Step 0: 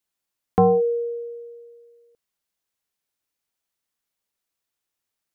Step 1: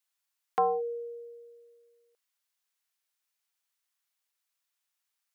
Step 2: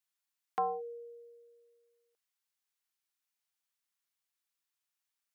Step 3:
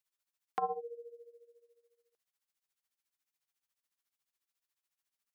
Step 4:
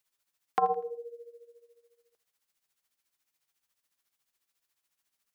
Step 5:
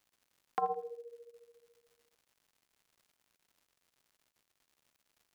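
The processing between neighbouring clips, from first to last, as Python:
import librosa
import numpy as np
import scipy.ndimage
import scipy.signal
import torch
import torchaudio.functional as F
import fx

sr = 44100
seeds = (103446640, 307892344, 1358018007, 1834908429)

y1 = scipy.signal.sosfilt(scipy.signal.butter(2, 950.0, 'highpass', fs=sr, output='sos'), x)
y2 = fx.peak_eq(y1, sr, hz=520.0, db=-8.5, octaves=0.28)
y2 = y2 * librosa.db_to_amplitude(-5.0)
y3 = y2 * (1.0 - 0.81 / 2.0 + 0.81 / 2.0 * np.cos(2.0 * np.pi * 14.0 * (np.arange(len(y2)) / sr)))
y3 = y3 * librosa.db_to_amplitude(2.5)
y4 = fx.echo_feedback(y3, sr, ms=82, feedback_pct=37, wet_db=-18.5)
y4 = y4 * librosa.db_to_amplitude(7.5)
y5 = fx.dmg_crackle(y4, sr, seeds[0], per_s=200.0, level_db=-51.0)
y5 = y5 * librosa.db_to_amplitude(-6.5)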